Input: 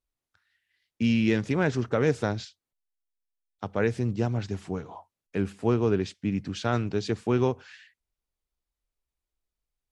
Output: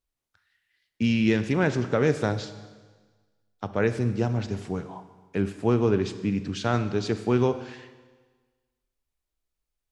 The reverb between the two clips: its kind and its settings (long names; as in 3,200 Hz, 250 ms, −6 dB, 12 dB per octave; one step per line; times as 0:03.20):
four-comb reverb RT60 1.4 s, combs from 29 ms, DRR 11 dB
level +1.5 dB